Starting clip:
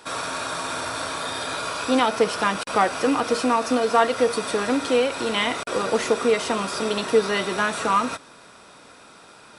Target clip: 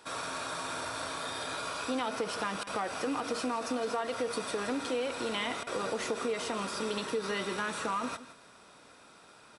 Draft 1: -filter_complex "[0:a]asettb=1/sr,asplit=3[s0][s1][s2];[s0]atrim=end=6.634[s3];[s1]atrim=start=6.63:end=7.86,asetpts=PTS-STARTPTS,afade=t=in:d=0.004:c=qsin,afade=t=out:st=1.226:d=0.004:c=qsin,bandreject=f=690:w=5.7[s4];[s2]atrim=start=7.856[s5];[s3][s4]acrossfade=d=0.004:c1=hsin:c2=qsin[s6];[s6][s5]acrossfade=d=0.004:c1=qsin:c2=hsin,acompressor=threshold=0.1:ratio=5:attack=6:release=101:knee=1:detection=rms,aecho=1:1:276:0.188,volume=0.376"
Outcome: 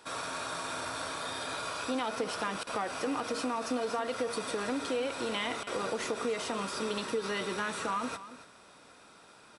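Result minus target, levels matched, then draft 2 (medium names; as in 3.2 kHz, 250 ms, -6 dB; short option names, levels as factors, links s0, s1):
echo 111 ms late
-filter_complex "[0:a]asettb=1/sr,asplit=3[s0][s1][s2];[s0]atrim=end=6.634[s3];[s1]atrim=start=6.63:end=7.86,asetpts=PTS-STARTPTS,afade=t=in:d=0.004:c=qsin,afade=t=out:st=1.226:d=0.004:c=qsin,bandreject=f=690:w=5.7[s4];[s2]atrim=start=7.856[s5];[s3][s4]acrossfade=d=0.004:c1=hsin:c2=qsin[s6];[s6][s5]acrossfade=d=0.004:c1=qsin:c2=hsin,acompressor=threshold=0.1:ratio=5:attack=6:release=101:knee=1:detection=rms,aecho=1:1:165:0.188,volume=0.376"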